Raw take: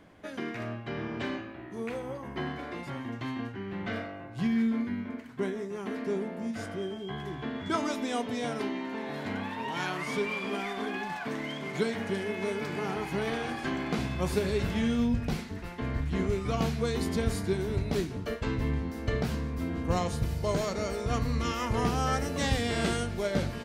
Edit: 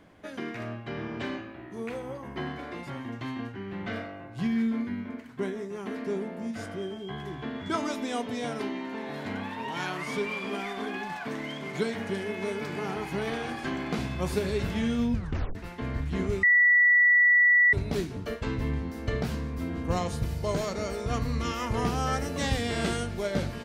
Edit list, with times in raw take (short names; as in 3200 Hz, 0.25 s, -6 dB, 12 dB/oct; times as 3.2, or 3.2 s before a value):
15.14 tape stop 0.41 s
16.43–17.73 bleep 1950 Hz -16.5 dBFS